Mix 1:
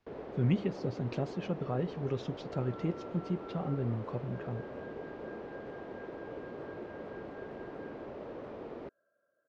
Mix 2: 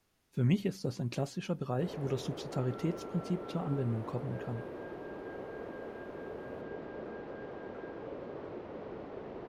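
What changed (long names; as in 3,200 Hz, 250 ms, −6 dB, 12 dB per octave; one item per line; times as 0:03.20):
speech: remove Gaussian smoothing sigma 1.8 samples
first sound: entry +1.75 s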